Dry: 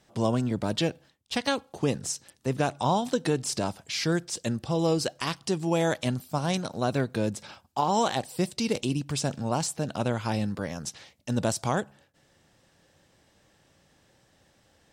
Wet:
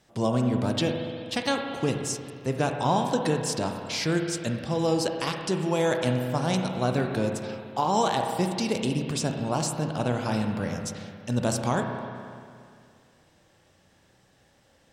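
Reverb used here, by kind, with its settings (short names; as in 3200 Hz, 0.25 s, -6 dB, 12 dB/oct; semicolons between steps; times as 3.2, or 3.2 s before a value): spring tank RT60 2.3 s, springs 32/58 ms, chirp 75 ms, DRR 3.5 dB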